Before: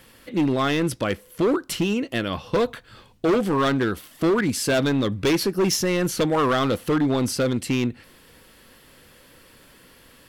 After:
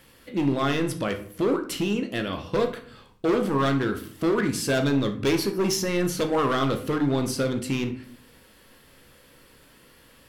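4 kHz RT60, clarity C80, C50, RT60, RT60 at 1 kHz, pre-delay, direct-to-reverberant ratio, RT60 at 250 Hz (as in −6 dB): 0.35 s, 15.5 dB, 11.0 dB, 0.55 s, 0.55 s, 15 ms, 5.5 dB, 0.70 s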